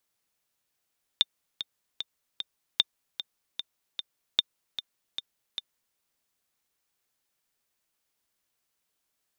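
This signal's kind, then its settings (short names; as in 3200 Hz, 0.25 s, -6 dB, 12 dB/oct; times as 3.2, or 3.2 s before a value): metronome 151 bpm, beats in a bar 4, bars 3, 3610 Hz, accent 12 dB -7 dBFS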